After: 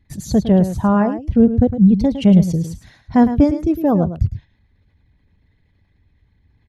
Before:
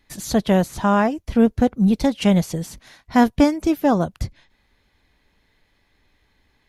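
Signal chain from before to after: resonances exaggerated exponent 1.5; peaking EQ 100 Hz +14.5 dB 2.4 oct; on a send: delay 108 ms -11 dB; on the sum: trim -3 dB

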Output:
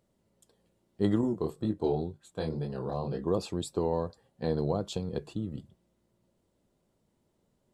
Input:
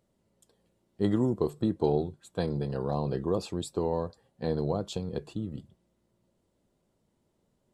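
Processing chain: 1.21–3.27 s: chorus 2 Hz, delay 19 ms, depth 6.7 ms

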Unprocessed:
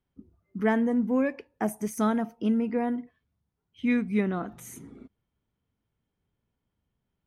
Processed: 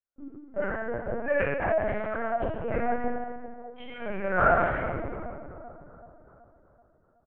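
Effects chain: single-diode clipper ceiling -16 dBFS; expander -55 dBFS; compressor with a negative ratio -33 dBFS, ratio -0.5; vibrato 6.1 Hz 9.5 cents; hard clipper -26.5 dBFS, distortion -16 dB; cabinet simulation 500–2200 Hz, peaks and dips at 600 Hz +8 dB, 1 kHz -5 dB, 1.5 kHz +9 dB; doubling 38 ms -11 dB; two-band feedback delay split 1.2 kHz, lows 379 ms, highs 114 ms, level -11.5 dB; reverberation RT60 1.4 s, pre-delay 4 ms, DRR -13.5 dB; LPC vocoder at 8 kHz pitch kept

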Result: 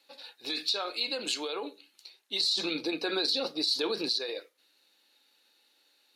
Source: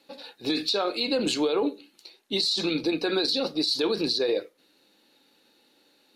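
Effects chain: high-pass 1.3 kHz 6 dB/octave, from 2.41 s 500 Hz, from 4.09 s 1.5 kHz; trim -2 dB

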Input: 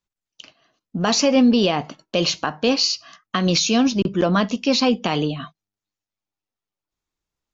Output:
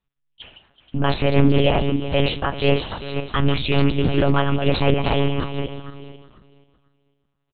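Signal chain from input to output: backward echo that repeats 246 ms, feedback 43%, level -7.5 dB; bass shelf 66 Hz +7.5 dB; in parallel at -3 dB: peak limiter -16 dBFS, peak gain reduction 11 dB; on the sum: wow and flutter 68 cents; doubling 31 ms -12.5 dB; on a send: delay 380 ms -15.5 dB; on the sum: simulated room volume 2100 m³, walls furnished, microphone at 0.5 m; monotone LPC vocoder at 8 kHz 140 Hz; loudspeaker Doppler distortion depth 0.26 ms; trim -2 dB

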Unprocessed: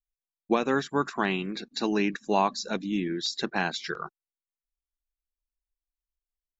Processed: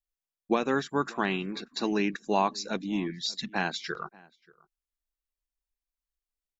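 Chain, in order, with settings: time-frequency box 3.10–3.53 s, 250–1700 Hz -24 dB; echo from a far wall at 100 m, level -24 dB; trim -1.5 dB

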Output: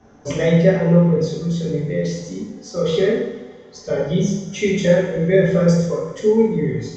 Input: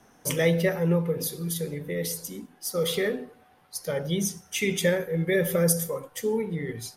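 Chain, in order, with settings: tilt shelf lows +5.5 dB, about 1.1 kHz; resampled via 16 kHz; two-slope reverb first 0.75 s, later 2.7 s, from -19 dB, DRR -4.5 dB

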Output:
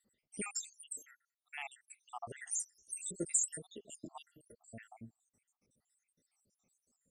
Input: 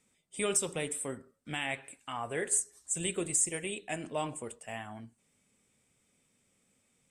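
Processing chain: random holes in the spectrogram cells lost 81%; graphic EQ with 31 bands 1 kHz -7 dB, 1.6 kHz -11 dB, 3.15 kHz -11 dB, 6.3 kHz +6 dB; trim -1.5 dB

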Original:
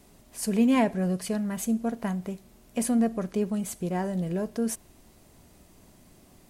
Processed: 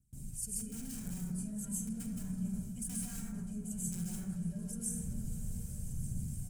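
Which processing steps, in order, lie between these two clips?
phaser 1 Hz, delay 2.2 ms, feedback 65%; integer overflow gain 17 dB; plate-style reverb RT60 0.88 s, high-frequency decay 0.4×, pre-delay 120 ms, DRR -10 dB; level rider gain up to 3.5 dB; peak limiter -11 dBFS, peak gain reduction 9.5 dB; reverse; compression 5:1, threshold -31 dBFS, peak gain reduction 15 dB; reverse; graphic EQ 125/1000/2000/4000/8000 Hz +10/-8/-7/-12/+11 dB; gate with hold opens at -35 dBFS; amplifier tone stack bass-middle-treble 6-0-2; comb 1.3 ms, depth 39%; on a send: delay with an opening low-pass 295 ms, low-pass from 200 Hz, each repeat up 2 oct, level -6 dB; on the sum: trim +6 dB

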